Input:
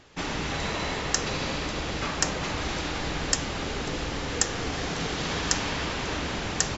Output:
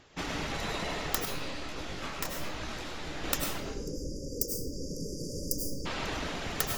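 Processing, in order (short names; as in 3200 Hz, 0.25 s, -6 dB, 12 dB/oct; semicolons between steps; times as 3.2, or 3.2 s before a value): tracing distortion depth 0.33 ms; 3.6–5.86 spectral delete 590–4600 Hz; reverb removal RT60 1.2 s; on a send at -1.5 dB: reverb RT60 0.55 s, pre-delay 60 ms; 1.25–3.24 on the sum: detuned doubles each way 50 cents; gain -4 dB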